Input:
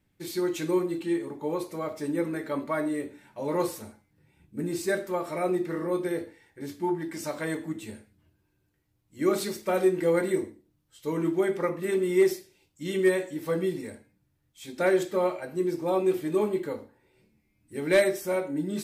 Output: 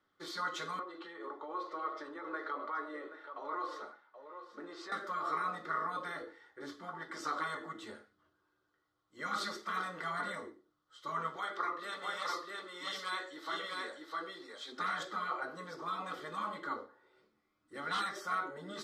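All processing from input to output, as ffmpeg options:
-filter_complex "[0:a]asettb=1/sr,asplit=3[s0][s1][s2];[s0]atrim=end=0.794[s3];[s1]atrim=start=0.79:end=4.92,asetpts=PTS-STARTPTS,afade=t=in:d=0.004:c=qsin,afade=t=out:st=4.126:d=0.004:c=qsin,acrossover=split=320 5200:gain=0.126 1 0.141[s4][s5][s6];[s4][s5][s6]amix=inputs=3:normalize=0,acompressor=threshold=0.0141:ratio=3:attack=3.2:release=140:knee=1:detection=peak,aecho=1:1:777:0.224,atrim=end_sample=182133[s7];[s2]atrim=start=4.916[s8];[s3][s7]acrossfade=d=0.004:c1=hsin:c2=qsin[s9];[s9][s8]acrossfade=d=0.004:c1=qsin:c2=hsin,asettb=1/sr,asplit=3[s10][s11][s12];[s10]atrim=end=11.364[s13];[s11]atrim=start=11.36:end=14.72,asetpts=PTS-STARTPTS,afade=t=in:d=0.004:c=qsin,afade=t=out:st=3.356:d=0.004:c=qsin,highpass=f=760:p=1,equalizer=f=4000:t=o:w=0.41:g=7,aecho=1:1:654:0.668,atrim=end_sample=148176[s14];[s12]atrim=start=14.716[s15];[s13][s14]acrossfade=d=0.004:c1=hsin:c2=qsin[s16];[s16][s15]acrossfade=d=0.004:c1=qsin:c2=hsin,acrossover=split=340 5500:gain=0.1 1 0.0708[s17][s18][s19];[s17][s18][s19]amix=inputs=3:normalize=0,afftfilt=real='re*lt(hypot(re,im),0.0708)':imag='im*lt(hypot(re,im),0.0708)':win_size=1024:overlap=0.75,superequalizer=10b=3.55:12b=0.316"

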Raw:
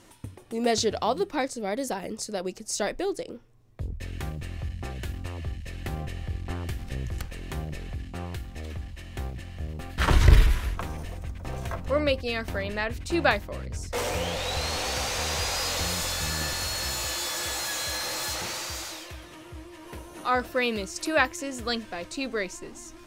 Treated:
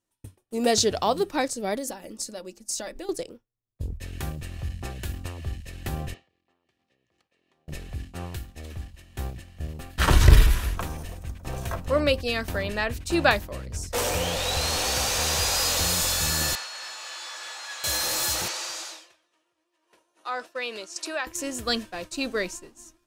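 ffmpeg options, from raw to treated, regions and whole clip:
-filter_complex "[0:a]asettb=1/sr,asplit=3[s0][s1][s2];[s0]atrim=end=1.754[s3];[s1]atrim=start=1.75:end=3.09,asetpts=PTS-STARTPTS,afade=t=in:d=0.004:c=qsin,afade=t=out:st=1.336:d=0.004:c=qsin,bandreject=f=50:t=h:w=6,bandreject=f=100:t=h:w=6,bandreject=f=150:t=h:w=6,bandreject=f=200:t=h:w=6,bandreject=f=250:t=h:w=6,bandreject=f=300:t=h:w=6,bandreject=f=350:t=h:w=6,bandreject=f=400:t=h:w=6,acompressor=threshold=0.0224:ratio=5:attack=3.2:release=140:knee=1:detection=peak,aecho=1:1:3.5:0.44,atrim=end_sample=59094[s4];[s2]atrim=start=3.086[s5];[s3][s4]acrossfade=d=0.004:c1=hsin:c2=qsin[s6];[s6][s5]acrossfade=d=0.004:c1=qsin:c2=hsin,asettb=1/sr,asplit=3[s7][s8][s9];[s7]atrim=end=6.144[s10];[s8]atrim=start=6.14:end=7.68,asetpts=PTS-STARTPTS,afade=t=in:d=0.004:c=qsin,afade=t=out:st=1.536:d=0.004:c=qsin,highpass=310,lowpass=4300,bandreject=f=1500:w=7.3,acompressor=threshold=0.00794:ratio=20:attack=3.2:release=140:knee=1:detection=peak[s11];[s9]atrim=start=7.676[s12];[s10][s11]acrossfade=d=0.004:c1=hsin:c2=qsin[s13];[s13][s12]acrossfade=d=0.004:c1=qsin:c2=hsin,asettb=1/sr,asplit=3[s14][s15][s16];[s14]atrim=end=16.554[s17];[s15]atrim=start=16.55:end=17.84,asetpts=PTS-STARTPTS,afade=t=in:d=0.004:c=qsin,afade=t=out:st=1.286:d=0.004:c=qsin,acrossover=split=9300[s18][s19];[s19]acompressor=threshold=0.00251:ratio=4:attack=1:release=60[s20];[s18][s20]amix=inputs=2:normalize=0,highpass=970,aemphasis=mode=reproduction:type=75fm[s21];[s16]atrim=start=17.836[s22];[s17][s21]acrossfade=d=0.004:c1=hsin:c2=qsin[s23];[s23][s22]acrossfade=d=0.004:c1=qsin:c2=hsin,asettb=1/sr,asplit=3[s24][s25][s26];[s24]atrim=end=18.484[s27];[s25]atrim=start=18.48:end=21.27,asetpts=PTS-STARTPTS,afade=t=in:d=0.004:c=qsin,afade=t=out:st=2.786:d=0.004:c=qsin,highpass=440,lowpass=7400,acompressor=threshold=0.0282:ratio=2.5:attack=3.2:release=140:knee=1:detection=peak[s28];[s26]atrim=start=21.266[s29];[s27][s28]acrossfade=d=0.004:c1=hsin:c2=qsin[s30];[s30][s29]acrossfade=d=0.004:c1=qsin:c2=hsin,highshelf=f=6600:g=8.5,bandreject=f=2100:w=16,agate=range=0.0224:threshold=0.0282:ratio=3:detection=peak,volume=1.26"

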